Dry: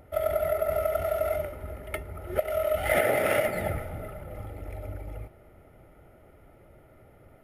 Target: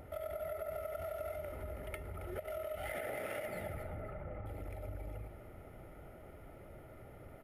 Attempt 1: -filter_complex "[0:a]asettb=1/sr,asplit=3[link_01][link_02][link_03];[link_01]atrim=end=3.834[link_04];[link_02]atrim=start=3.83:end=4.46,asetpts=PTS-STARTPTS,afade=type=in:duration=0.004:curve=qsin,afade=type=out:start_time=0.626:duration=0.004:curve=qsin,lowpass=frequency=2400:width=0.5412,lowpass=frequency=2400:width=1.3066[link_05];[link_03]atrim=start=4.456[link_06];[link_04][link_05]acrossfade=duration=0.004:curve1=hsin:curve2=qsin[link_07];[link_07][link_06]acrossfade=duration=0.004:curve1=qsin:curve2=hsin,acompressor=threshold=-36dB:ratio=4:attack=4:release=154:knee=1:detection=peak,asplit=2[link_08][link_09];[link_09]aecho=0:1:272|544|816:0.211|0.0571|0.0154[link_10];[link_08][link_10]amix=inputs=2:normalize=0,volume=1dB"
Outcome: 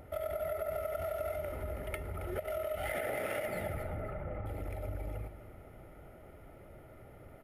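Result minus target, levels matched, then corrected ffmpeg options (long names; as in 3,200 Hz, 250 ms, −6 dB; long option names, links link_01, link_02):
downward compressor: peak gain reduction −5 dB
-filter_complex "[0:a]asettb=1/sr,asplit=3[link_01][link_02][link_03];[link_01]atrim=end=3.834[link_04];[link_02]atrim=start=3.83:end=4.46,asetpts=PTS-STARTPTS,afade=type=in:duration=0.004:curve=qsin,afade=type=out:start_time=0.626:duration=0.004:curve=qsin,lowpass=frequency=2400:width=0.5412,lowpass=frequency=2400:width=1.3066[link_05];[link_03]atrim=start=4.456[link_06];[link_04][link_05]acrossfade=duration=0.004:curve1=hsin:curve2=qsin[link_07];[link_07][link_06]acrossfade=duration=0.004:curve1=qsin:curve2=hsin,acompressor=threshold=-42.5dB:ratio=4:attack=4:release=154:knee=1:detection=peak,asplit=2[link_08][link_09];[link_09]aecho=0:1:272|544|816:0.211|0.0571|0.0154[link_10];[link_08][link_10]amix=inputs=2:normalize=0,volume=1dB"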